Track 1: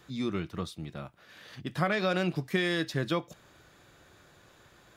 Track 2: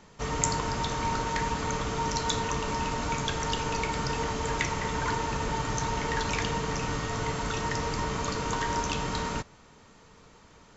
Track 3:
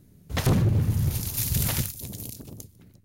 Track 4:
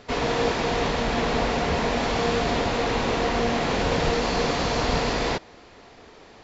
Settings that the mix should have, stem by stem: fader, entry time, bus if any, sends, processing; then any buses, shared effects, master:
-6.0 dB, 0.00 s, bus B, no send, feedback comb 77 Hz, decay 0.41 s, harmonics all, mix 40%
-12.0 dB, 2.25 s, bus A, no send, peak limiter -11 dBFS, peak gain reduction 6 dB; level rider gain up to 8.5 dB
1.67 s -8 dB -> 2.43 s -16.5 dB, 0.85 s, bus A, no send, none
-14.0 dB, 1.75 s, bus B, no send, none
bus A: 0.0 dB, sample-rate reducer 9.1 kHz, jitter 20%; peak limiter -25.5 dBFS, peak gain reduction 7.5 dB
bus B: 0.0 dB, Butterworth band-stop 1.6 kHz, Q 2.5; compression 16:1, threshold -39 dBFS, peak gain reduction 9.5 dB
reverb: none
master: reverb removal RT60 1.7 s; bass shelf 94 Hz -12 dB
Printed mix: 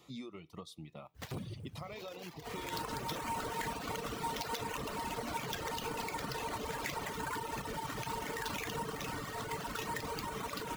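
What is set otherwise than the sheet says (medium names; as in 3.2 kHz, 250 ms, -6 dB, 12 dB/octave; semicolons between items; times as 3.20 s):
stem 1 -6.0 dB -> +1.0 dB; stem 3 -8.0 dB -> -16.0 dB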